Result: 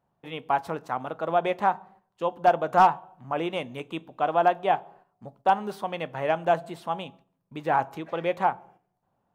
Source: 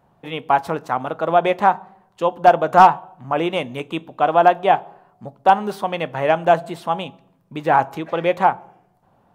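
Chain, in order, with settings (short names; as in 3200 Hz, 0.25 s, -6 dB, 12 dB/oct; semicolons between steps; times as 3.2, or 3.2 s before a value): gate -45 dBFS, range -8 dB; gain -8 dB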